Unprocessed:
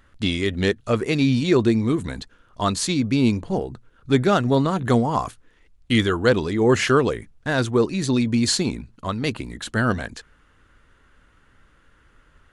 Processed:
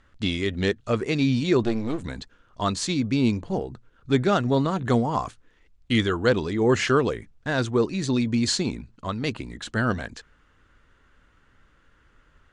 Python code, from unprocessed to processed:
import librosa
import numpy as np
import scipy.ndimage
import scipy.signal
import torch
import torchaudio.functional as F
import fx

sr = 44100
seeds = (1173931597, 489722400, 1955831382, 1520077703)

y = fx.halfwave_gain(x, sr, db=-12.0, at=(1.63, 2.03))
y = scipy.signal.sosfilt(scipy.signal.butter(4, 8200.0, 'lowpass', fs=sr, output='sos'), y)
y = F.gain(torch.from_numpy(y), -3.0).numpy()